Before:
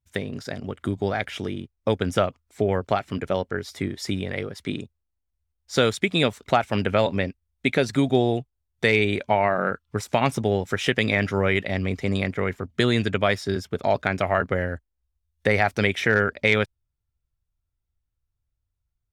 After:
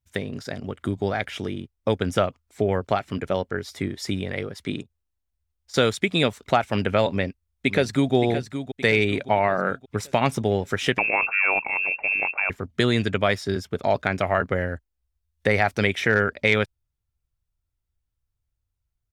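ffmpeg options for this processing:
-filter_complex "[0:a]asettb=1/sr,asplit=3[a][b][c];[a]atrim=end=4.824[d];[b]atrim=start=4.82:end=5.74,asetpts=PTS-STARTPTS,afade=t=in:d=0.004:c=qsin,afade=t=out:st=0.916:d=0.004:c=qsin,acompressor=threshold=-45dB:ratio=6:attack=3.2:release=140:knee=1:detection=peak[e];[c]atrim=start=5.736[f];[d][e]acrossfade=d=0.004:c1=hsin:c2=qsin[g];[g][f]acrossfade=d=0.004:c1=qsin:c2=hsin,asplit=2[h][i];[i]afade=t=in:st=7.11:d=0.01,afade=t=out:st=8.14:d=0.01,aecho=0:1:570|1140|1710|2280|2850:0.334965|0.150734|0.0678305|0.0305237|0.0137357[j];[h][j]amix=inputs=2:normalize=0,asettb=1/sr,asplit=3[k][l][m];[k]atrim=end=10.984[n];[l]atrim=start=10.98:end=12.5,asetpts=PTS-STARTPTS,afade=t=in:d=0.004:c=qsin,afade=t=out:st=1.516:d=0.004:c=qsin,lowpass=f=2.4k:t=q:w=0.5098,lowpass=f=2.4k:t=q:w=0.6013,lowpass=f=2.4k:t=q:w=0.9,lowpass=f=2.4k:t=q:w=2.563,afreqshift=-2800[o];[m]atrim=start=12.496[p];[n][o]acrossfade=d=0.004:c1=hsin:c2=qsin[q];[q][p]acrossfade=d=0.004:c1=qsin:c2=hsin"

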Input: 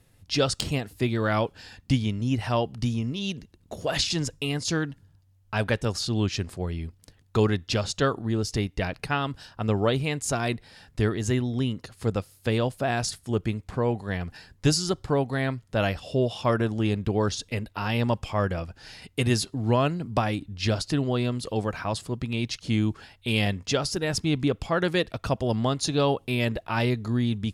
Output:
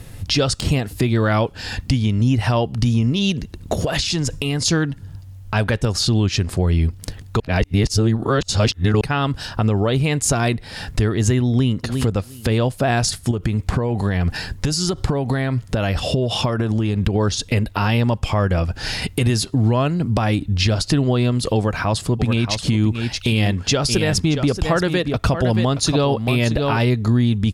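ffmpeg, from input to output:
-filter_complex "[0:a]asettb=1/sr,asplit=3[a][b][c];[a]atrim=end=3.824[d];[b]atrim=start=3.82:end=4.66,asetpts=PTS-STARTPTS,afade=t=in:d=0.004:c=qsin,afade=t=out:st=0.836:d=0.004:c=qsin,acompressor=threshold=-34dB:ratio=6:attack=3.2:release=140:knee=1:detection=peak[e];[c]atrim=start=4.656[f];[d][e]acrossfade=d=0.004:c1=hsin:c2=qsin[g];[g][f]acrossfade=d=0.004:c1=qsin:c2=hsin,asplit=2[h][i];[i]afade=t=in:st=11.48:d=0.01,afade=t=out:st=11.97:d=0.01,aecho=0:1:350|700:0.188365|0.037673[j];[h][j]amix=inputs=2:normalize=0,asettb=1/sr,asplit=3[k][l][m];[k]atrim=end=13.314[n];[l]atrim=start=13.31:end=17.16,asetpts=PTS-STARTPTS,afade=t=in:d=0.004:c=qsin,afade=t=out:st=3.846:d=0.004:c=qsin,acompressor=threshold=-30dB:ratio=10:attack=3.2:release=140:knee=1:detection=peak[o];[m]atrim=start=17.156[p];[n][o]acrossfade=d=0.004:c1=hsin:c2=qsin[q];[q][p]acrossfade=d=0.004:c1=qsin:c2=hsin,asplit=3[r][s][t];[r]afade=t=out:st=22.19:d=0.02[u];[s]aecho=1:1:626:0.335,afade=t=in:st=22.19:d=0.02,afade=t=out:st=26.89:d=0.02[v];[t]afade=t=in:st=26.89:d=0.02[w];[u][v][w]amix=inputs=3:normalize=0,asplit=3[x][y][z];[x]atrim=end=7.402[aa];[y]atrim=start=7.398:end=9.012,asetpts=PTS-STARTPTS,areverse[ab];[z]atrim=start=9.008[ac];[aa][ab]acrossfade=d=0.004:c1=hsin:c2=hsin[ad];[ad][ac]acrossfade=d=0.004:c1=hsin:c2=hsin,acompressor=threshold=-40dB:ratio=3,lowshelf=f=130:g=6.5,alimiter=level_in=26.5dB:limit=-1dB:release=50:level=0:latency=1,volume=-6.5dB"

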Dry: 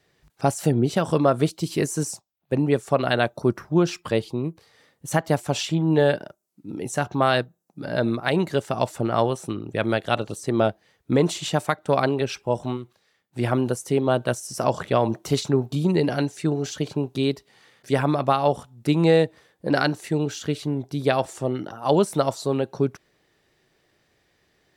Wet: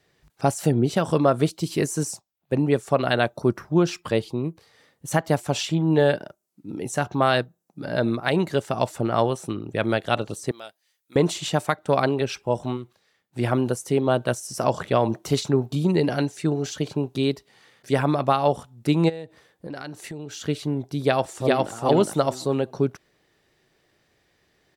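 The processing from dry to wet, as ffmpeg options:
-filter_complex "[0:a]asettb=1/sr,asplit=3[a][b][c];[a]atrim=end=10.514[d];[b]atrim=start=10.51:end=11.16,asetpts=PTS-STARTPTS,afade=t=in:d=0.004:c=qsin,afade=t=out:st=0.646:d=0.004:c=qsin,aderivative[e];[c]atrim=start=11.156[f];[d][e]acrossfade=d=0.004:c1=hsin:c2=qsin[g];[g][f]acrossfade=d=0.004:c1=qsin:c2=hsin,asplit=3[h][i][j];[h]afade=t=out:st=19.08:d=0.02[k];[i]acompressor=threshold=-32dB:ratio=6:attack=3.2:release=140:knee=1:detection=peak,afade=t=in:st=19.08:d=0.02,afade=t=out:st=20.39:d=0.02[l];[j]afade=t=in:st=20.39:d=0.02[m];[k][l][m]amix=inputs=3:normalize=0,asplit=2[n][o];[o]afade=t=in:st=20.99:d=0.01,afade=t=out:st=21.72:d=0.01,aecho=0:1:410|820|1230:0.944061|0.188812|0.0377624[p];[n][p]amix=inputs=2:normalize=0"

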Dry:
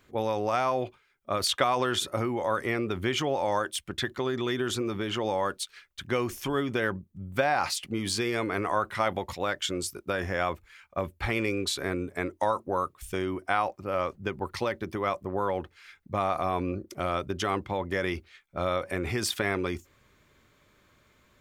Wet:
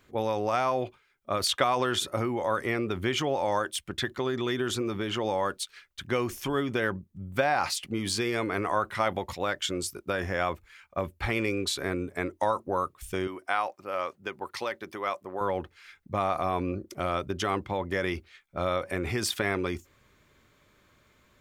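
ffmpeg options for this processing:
-filter_complex "[0:a]asettb=1/sr,asplit=3[a][b][c];[a]atrim=end=13.274[d];[b]atrim=start=13.27:end=15.41,asetpts=PTS-STARTPTS,afade=t=in:d=0.004:c=qsin,afade=t=out:st=2.136:d=0.004:c=qsin,highpass=f=620:p=1[e];[c]atrim=start=15.406[f];[d][e]acrossfade=d=0.004:c1=hsin:c2=qsin[g];[g][f]acrossfade=d=0.004:c1=qsin:c2=hsin"

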